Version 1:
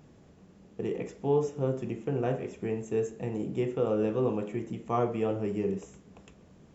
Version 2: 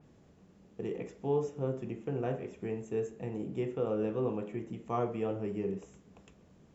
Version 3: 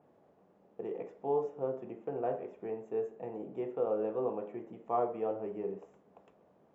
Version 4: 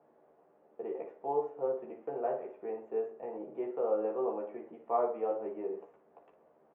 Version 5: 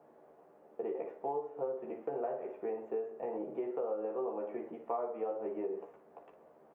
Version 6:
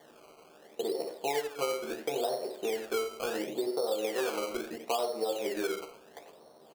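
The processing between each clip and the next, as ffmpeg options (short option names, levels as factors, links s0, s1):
-af "adynamicequalizer=threshold=0.00178:dfrequency=3800:dqfactor=0.7:tfrequency=3800:tqfactor=0.7:attack=5:release=100:ratio=0.375:range=3:mode=cutabove:tftype=highshelf,volume=0.596"
-af "bandpass=f=700:t=q:w=1.5:csg=0,volume=1.68"
-filter_complex "[0:a]acrossover=split=290 2600:gain=0.224 1 0.0794[s0][s1][s2];[s0][s1][s2]amix=inputs=3:normalize=0,aecho=1:1:13|57:0.668|0.282"
-af "acompressor=threshold=0.0126:ratio=6,volume=1.68"
-filter_complex "[0:a]acrusher=samples=17:mix=1:aa=0.000001:lfo=1:lforange=17:lforate=0.73,asplit=2[s0][s1];[s1]adelay=90,highpass=300,lowpass=3400,asoftclip=type=hard:threshold=0.0266,volume=0.282[s2];[s0][s2]amix=inputs=2:normalize=0,volume=1.68"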